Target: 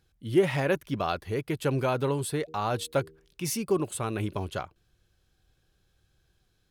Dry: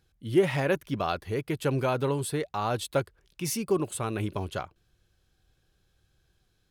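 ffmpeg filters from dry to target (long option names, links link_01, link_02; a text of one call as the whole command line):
ffmpeg -i in.wav -filter_complex "[0:a]asplit=3[link_01][link_02][link_03];[link_01]afade=type=out:start_time=2.47:duration=0.02[link_04];[link_02]bandreject=frequency=78.7:width_type=h:width=4,bandreject=frequency=157.4:width_type=h:width=4,bandreject=frequency=236.1:width_type=h:width=4,bandreject=frequency=314.8:width_type=h:width=4,bandreject=frequency=393.5:width_type=h:width=4,bandreject=frequency=472.2:width_type=h:width=4,afade=type=in:start_time=2.47:duration=0.02,afade=type=out:start_time=3.44:duration=0.02[link_05];[link_03]afade=type=in:start_time=3.44:duration=0.02[link_06];[link_04][link_05][link_06]amix=inputs=3:normalize=0" out.wav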